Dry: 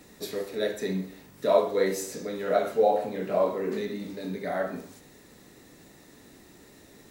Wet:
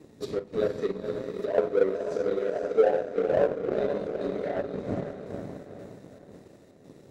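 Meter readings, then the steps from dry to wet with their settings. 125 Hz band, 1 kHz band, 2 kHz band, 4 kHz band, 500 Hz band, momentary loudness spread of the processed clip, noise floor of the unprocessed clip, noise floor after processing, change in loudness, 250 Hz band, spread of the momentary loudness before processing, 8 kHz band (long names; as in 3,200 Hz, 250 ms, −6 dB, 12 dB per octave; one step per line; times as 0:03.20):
+1.0 dB, −5.5 dB, −2.5 dB, can't be measured, +1.0 dB, 15 LU, −54 dBFS, −54 dBFS, 0.0 dB, −0.5 dB, 12 LU, below −10 dB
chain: wind on the microphone 140 Hz −33 dBFS
meter weighting curve A
treble cut that deepens with the level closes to 1,300 Hz, closed at −24.5 dBFS
low shelf with overshoot 670 Hz +11.5 dB, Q 1.5
square-wave tremolo 1.9 Hz, depth 60%, duty 75%
feedback delay with all-pass diffusion 482 ms, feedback 53%, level −5.5 dB
power curve on the samples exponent 1.4
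downward compressor 1.5 to 1, threshold −34 dBFS, peak gain reduction 9 dB
level +2.5 dB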